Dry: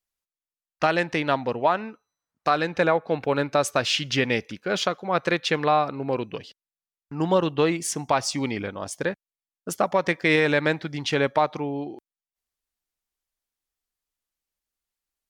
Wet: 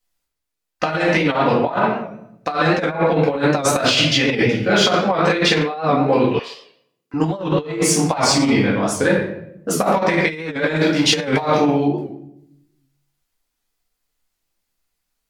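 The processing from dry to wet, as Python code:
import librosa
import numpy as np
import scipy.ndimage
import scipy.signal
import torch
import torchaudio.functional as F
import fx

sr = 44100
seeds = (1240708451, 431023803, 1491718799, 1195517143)

y = fx.room_shoebox(x, sr, seeds[0], volume_m3=180.0, walls='mixed', distance_m=2.0)
y = fx.over_compress(y, sr, threshold_db=-18.0, ratio=-0.5)
y = fx.highpass(y, sr, hz=930.0, slope=12, at=(6.39, 7.14))
y = fx.high_shelf(y, sr, hz=5000.0, db=11.0, at=(10.76, 11.88))
y = fx.record_warp(y, sr, rpm=78.0, depth_cents=100.0)
y = y * librosa.db_to_amplitude(1.5)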